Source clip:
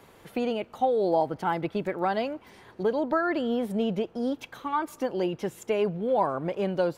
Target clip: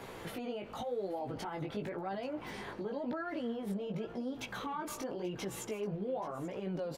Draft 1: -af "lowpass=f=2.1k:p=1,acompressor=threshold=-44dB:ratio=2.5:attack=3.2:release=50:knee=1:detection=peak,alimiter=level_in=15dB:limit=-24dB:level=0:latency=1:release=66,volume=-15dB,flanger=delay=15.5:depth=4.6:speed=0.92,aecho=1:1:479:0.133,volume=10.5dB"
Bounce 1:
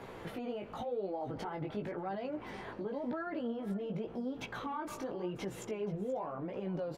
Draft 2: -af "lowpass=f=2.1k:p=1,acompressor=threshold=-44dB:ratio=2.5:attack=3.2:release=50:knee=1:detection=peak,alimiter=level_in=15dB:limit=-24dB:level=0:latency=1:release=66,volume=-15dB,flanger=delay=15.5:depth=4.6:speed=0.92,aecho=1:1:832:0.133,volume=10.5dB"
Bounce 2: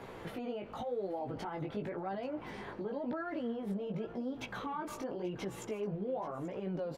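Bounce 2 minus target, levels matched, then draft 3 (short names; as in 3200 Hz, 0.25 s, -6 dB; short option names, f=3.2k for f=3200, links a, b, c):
8000 Hz band -6.5 dB
-af "lowpass=f=7.9k:p=1,acompressor=threshold=-44dB:ratio=2.5:attack=3.2:release=50:knee=1:detection=peak,alimiter=level_in=15dB:limit=-24dB:level=0:latency=1:release=66,volume=-15dB,flanger=delay=15.5:depth=4.6:speed=0.92,aecho=1:1:832:0.133,volume=10.5dB"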